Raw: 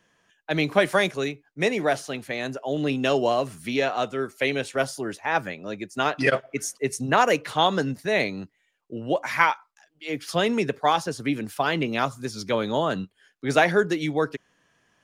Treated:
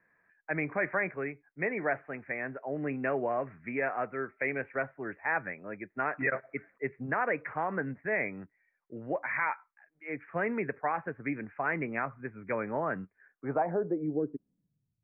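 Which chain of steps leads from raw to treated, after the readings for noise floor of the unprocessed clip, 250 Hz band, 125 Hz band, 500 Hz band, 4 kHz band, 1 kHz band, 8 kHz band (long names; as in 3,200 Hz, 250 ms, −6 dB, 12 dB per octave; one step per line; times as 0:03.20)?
−70 dBFS, −9.0 dB, −9.5 dB, −9.5 dB, below −40 dB, −9.5 dB, below −40 dB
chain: Chebyshev low-pass filter 2,400 Hz, order 6
brickwall limiter −14 dBFS, peak gain reduction 10 dB
low-pass filter sweep 1,900 Hz → 110 Hz, 0:13.15–0:14.97
level −8.5 dB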